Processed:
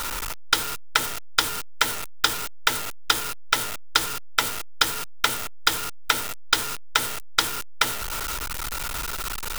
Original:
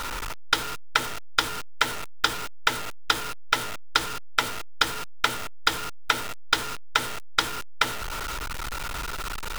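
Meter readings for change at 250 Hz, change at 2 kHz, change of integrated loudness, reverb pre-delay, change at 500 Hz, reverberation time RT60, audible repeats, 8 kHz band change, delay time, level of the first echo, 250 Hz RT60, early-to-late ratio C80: 0.0 dB, +1.0 dB, +2.5 dB, no reverb audible, 0.0 dB, no reverb audible, no echo audible, +6.5 dB, no echo audible, no echo audible, no reverb audible, no reverb audible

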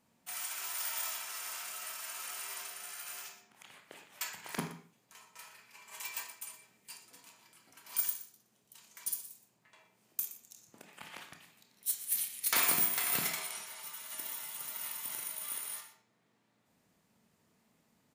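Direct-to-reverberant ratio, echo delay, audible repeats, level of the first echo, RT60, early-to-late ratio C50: 3.0 dB, 120 ms, 1, −15.0 dB, 0.45 s, 7.5 dB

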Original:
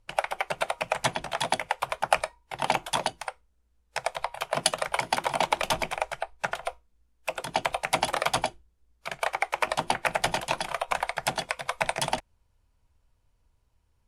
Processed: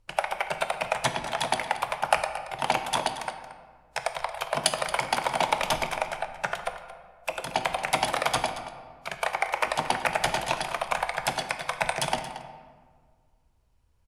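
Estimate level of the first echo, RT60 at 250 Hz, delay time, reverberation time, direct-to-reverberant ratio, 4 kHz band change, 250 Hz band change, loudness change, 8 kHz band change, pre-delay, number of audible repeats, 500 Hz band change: −14.0 dB, 2.1 s, 227 ms, 1.7 s, 7.0 dB, +0.5 dB, +1.0 dB, +0.5 dB, +0.5 dB, 19 ms, 1, +0.5 dB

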